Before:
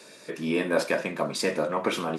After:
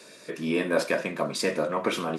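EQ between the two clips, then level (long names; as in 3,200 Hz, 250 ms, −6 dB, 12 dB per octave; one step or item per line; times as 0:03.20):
notch filter 850 Hz, Q 12
0.0 dB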